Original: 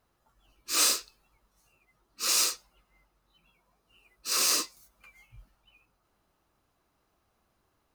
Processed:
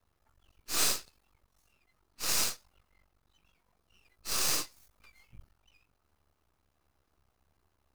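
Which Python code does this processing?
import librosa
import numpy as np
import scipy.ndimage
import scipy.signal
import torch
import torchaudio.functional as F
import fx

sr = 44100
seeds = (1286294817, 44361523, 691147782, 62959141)

y = fx.peak_eq(x, sr, hz=70.0, db=14.5, octaves=0.54)
y = np.maximum(y, 0.0)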